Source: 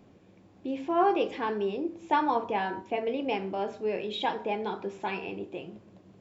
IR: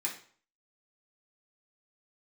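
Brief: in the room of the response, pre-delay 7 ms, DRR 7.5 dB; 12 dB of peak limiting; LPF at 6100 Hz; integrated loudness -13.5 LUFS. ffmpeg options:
-filter_complex "[0:a]lowpass=6.1k,alimiter=level_in=1.5dB:limit=-24dB:level=0:latency=1,volume=-1.5dB,asplit=2[a][b];[1:a]atrim=start_sample=2205,adelay=7[c];[b][c]afir=irnorm=-1:irlink=0,volume=-11dB[d];[a][d]amix=inputs=2:normalize=0,volume=21dB"

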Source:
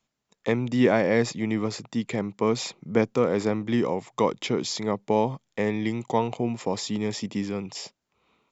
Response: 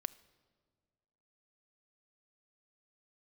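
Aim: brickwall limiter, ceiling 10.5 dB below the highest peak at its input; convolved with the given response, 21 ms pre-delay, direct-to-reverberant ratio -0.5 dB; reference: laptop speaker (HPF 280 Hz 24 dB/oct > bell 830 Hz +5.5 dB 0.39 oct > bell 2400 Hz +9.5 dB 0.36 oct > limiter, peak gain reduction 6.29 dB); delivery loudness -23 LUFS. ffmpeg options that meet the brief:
-filter_complex "[0:a]alimiter=limit=-17.5dB:level=0:latency=1,asplit=2[a][b];[1:a]atrim=start_sample=2205,adelay=21[c];[b][c]afir=irnorm=-1:irlink=0,volume=2.5dB[d];[a][d]amix=inputs=2:normalize=0,highpass=f=280:w=0.5412,highpass=f=280:w=1.3066,equalizer=f=830:t=o:w=0.39:g=5.5,equalizer=f=2.4k:t=o:w=0.36:g=9.5,volume=5.5dB,alimiter=limit=-12dB:level=0:latency=1"

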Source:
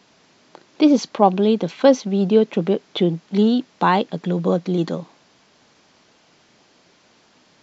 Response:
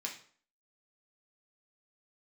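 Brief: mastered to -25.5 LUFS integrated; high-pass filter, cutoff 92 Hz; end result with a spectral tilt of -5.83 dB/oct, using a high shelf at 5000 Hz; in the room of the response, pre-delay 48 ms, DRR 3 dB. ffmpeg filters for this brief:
-filter_complex "[0:a]highpass=92,highshelf=f=5k:g=-3.5,asplit=2[a][b];[1:a]atrim=start_sample=2205,adelay=48[c];[b][c]afir=irnorm=-1:irlink=0,volume=-3.5dB[d];[a][d]amix=inputs=2:normalize=0,volume=-8dB"

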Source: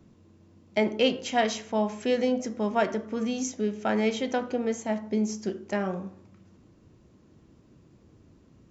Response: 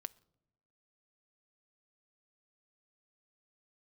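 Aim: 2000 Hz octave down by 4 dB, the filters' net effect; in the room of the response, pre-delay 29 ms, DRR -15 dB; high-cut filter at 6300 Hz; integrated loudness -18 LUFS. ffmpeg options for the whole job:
-filter_complex "[0:a]lowpass=6.3k,equalizer=f=2k:t=o:g=-5,asplit=2[a][b];[1:a]atrim=start_sample=2205,adelay=29[c];[b][c]afir=irnorm=-1:irlink=0,volume=18.5dB[d];[a][d]amix=inputs=2:normalize=0,volume=-4.5dB"

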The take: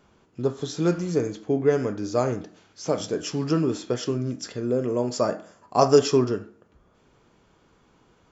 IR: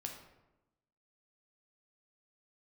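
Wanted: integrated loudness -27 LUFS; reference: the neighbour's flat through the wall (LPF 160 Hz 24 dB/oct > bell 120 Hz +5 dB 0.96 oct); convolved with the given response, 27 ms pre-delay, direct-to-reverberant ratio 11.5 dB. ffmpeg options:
-filter_complex "[0:a]asplit=2[a][b];[1:a]atrim=start_sample=2205,adelay=27[c];[b][c]afir=irnorm=-1:irlink=0,volume=-9.5dB[d];[a][d]amix=inputs=2:normalize=0,lowpass=f=160:w=0.5412,lowpass=f=160:w=1.3066,equalizer=f=120:t=o:w=0.96:g=5,volume=6dB"

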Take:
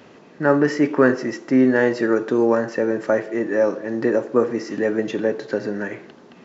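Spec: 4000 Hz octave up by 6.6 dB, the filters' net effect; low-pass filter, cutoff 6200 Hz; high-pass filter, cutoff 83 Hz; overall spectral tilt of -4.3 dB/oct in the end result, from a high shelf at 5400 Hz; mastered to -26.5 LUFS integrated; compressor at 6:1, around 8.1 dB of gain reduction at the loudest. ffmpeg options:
-af "highpass=83,lowpass=6.2k,equalizer=f=4k:t=o:g=8,highshelf=f=5.4k:g=4.5,acompressor=threshold=-19dB:ratio=6,volume=-1.5dB"

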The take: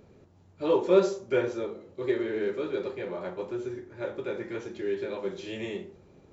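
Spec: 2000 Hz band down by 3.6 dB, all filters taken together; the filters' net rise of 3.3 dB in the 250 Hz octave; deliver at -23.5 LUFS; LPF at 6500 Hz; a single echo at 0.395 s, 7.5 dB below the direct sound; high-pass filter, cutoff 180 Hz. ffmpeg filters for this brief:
-af "highpass=180,lowpass=6.5k,equalizer=f=250:t=o:g=7,equalizer=f=2k:t=o:g=-5,aecho=1:1:395:0.422,volume=4.5dB"

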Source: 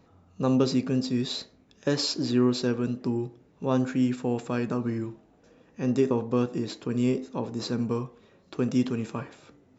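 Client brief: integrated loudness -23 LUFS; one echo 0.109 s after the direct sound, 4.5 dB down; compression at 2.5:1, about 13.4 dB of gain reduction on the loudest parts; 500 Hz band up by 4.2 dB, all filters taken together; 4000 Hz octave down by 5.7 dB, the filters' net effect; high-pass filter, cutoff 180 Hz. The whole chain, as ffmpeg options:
-af "highpass=180,equalizer=f=500:t=o:g=5.5,equalizer=f=4k:t=o:g=-7,acompressor=threshold=-37dB:ratio=2.5,aecho=1:1:109:0.596,volume=13dB"

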